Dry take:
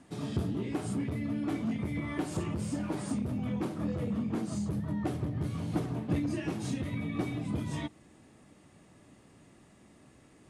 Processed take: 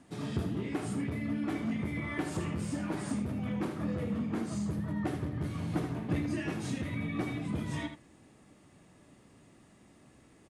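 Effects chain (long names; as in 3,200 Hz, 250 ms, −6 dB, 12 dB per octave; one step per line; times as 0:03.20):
dynamic equaliser 1,800 Hz, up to +5 dB, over −58 dBFS, Q 1.3
on a send: single-tap delay 78 ms −9 dB
on the sum: level −1.5 dB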